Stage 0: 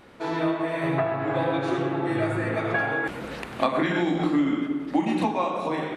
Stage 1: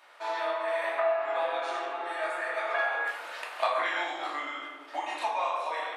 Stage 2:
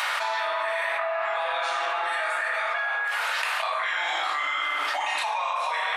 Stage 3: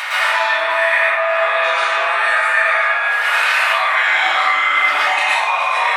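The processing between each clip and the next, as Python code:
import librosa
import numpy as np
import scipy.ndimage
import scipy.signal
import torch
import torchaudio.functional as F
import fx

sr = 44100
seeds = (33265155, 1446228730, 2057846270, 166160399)

y1 = fx.add_hum(x, sr, base_hz=50, snr_db=15)
y1 = scipy.signal.sosfilt(scipy.signal.butter(4, 680.0, 'highpass', fs=sr, output='sos'), y1)
y1 = fx.room_shoebox(y1, sr, seeds[0], volume_m3=430.0, walls='furnished', distance_m=2.7)
y1 = y1 * librosa.db_to_amplitude(-4.5)
y2 = scipy.signal.sosfilt(scipy.signal.butter(2, 1000.0, 'highpass', fs=sr, output='sos'), y1)
y2 = fx.env_flatten(y2, sr, amount_pct=100)
y3 = fx.peak_eq(y2, sr, hz=2100.0, db=6.0, octaves=0.87)
y3 = fx.echo_feedback(y3, sr, ms=592, feedback_pct=56, wet_db=-15.0)
y3 = fx.rev_plate(y3, sr, seeds[1], rt60_s=0.63, hf_ratio=0.8, predelay_ms=100, drr_db=-8.0)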